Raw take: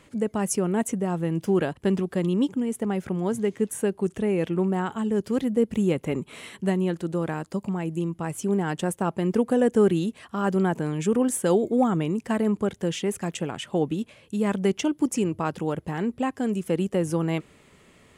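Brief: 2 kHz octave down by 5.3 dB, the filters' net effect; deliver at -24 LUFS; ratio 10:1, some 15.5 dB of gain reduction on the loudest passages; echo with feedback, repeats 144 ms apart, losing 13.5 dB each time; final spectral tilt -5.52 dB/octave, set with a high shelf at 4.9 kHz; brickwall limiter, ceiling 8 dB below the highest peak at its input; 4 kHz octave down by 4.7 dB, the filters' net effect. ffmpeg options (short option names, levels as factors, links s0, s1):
-af "equalizer=f=2000:t=o:g=-6.5,equalizer=f=4000:t=o:g=-6,highshelf=f=4900:g=5,acompressor=threshold=0.0251:ratio=10,alimiter=level_in=2:limit=0.0631:level=0:latency=1,volume=0.501,aecho=1:1:144|288:0.211|0.0444,volume=5.31"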